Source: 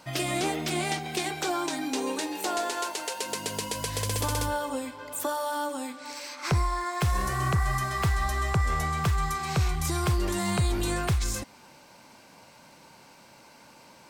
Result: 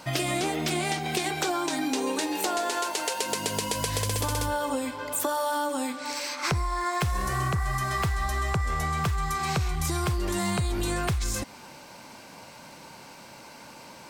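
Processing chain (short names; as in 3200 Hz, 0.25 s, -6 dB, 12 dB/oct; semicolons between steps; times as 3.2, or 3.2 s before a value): compressor, threshold -31 dBFS, peak gain reduction 10 dB; gain +6.5 dB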